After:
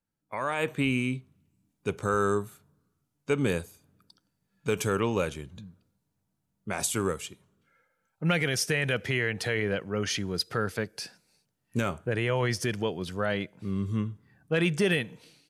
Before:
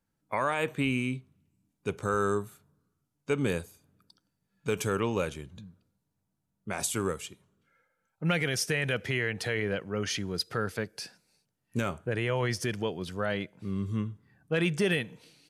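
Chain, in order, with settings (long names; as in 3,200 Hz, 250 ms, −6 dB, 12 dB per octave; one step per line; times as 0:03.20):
automatic gain control gain up to 9 dB
level −7 dB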